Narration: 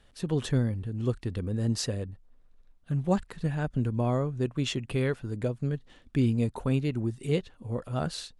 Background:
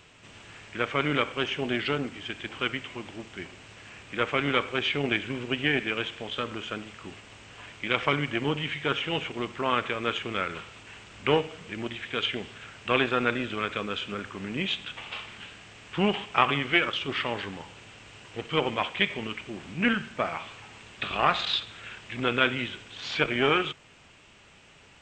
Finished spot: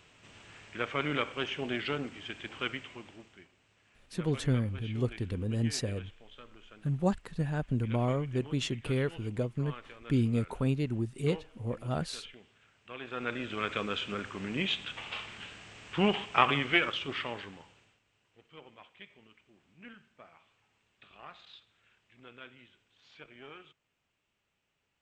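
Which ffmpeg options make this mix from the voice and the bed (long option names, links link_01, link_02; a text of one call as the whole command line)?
ffmpeg -i stem1.wav -i stem2.wav -filter_complex "[0:a]adelay=3950,volume=-2.5dB[link_01];[1:a]volume=13dB,afade=type=out:start_time=2.7:duration=0.79:silence=0.177828,afade=type=in:start_time=12.99:duration=0.77:silence=0.11885,afade=type=out:start_time=16.6:duration=1.41:silence=0.0630957[link_02];[link_01][link_02]amix=inputs=2:normalize=0" out.wav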